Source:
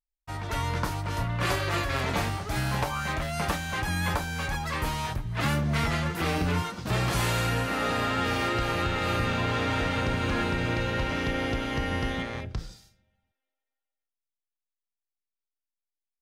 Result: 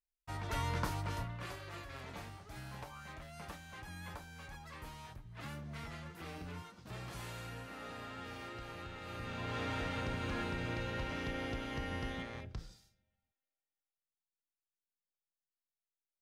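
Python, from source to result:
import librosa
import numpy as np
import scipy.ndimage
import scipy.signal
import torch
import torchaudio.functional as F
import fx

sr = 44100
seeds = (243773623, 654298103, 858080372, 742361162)

y = fx.gain(x, sr, db=fx.line((1.07, -7.0), (1.52, -19.5), (9.05, -19.5), (9.6, -11.0)))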